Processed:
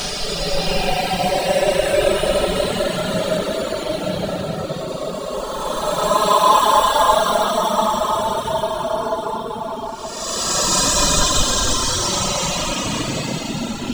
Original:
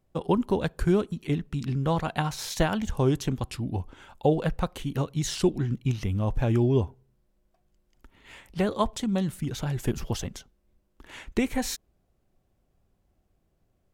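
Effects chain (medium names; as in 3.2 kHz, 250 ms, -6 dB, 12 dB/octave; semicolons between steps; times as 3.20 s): coarse spectral quantiser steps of 30 dB; frequency weighting ITU-R 468; in parallel at -3 dB: sample-rate reducer 2.3 kHz, jitter 0%; on the sum: simulated room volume 230 m³, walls furnished, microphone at 5.9 m; upward compressor, threshold -20 dBFS; Paulstretch 27×, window 0.05 s, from 8.58 s; reverb removal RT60 0.79 s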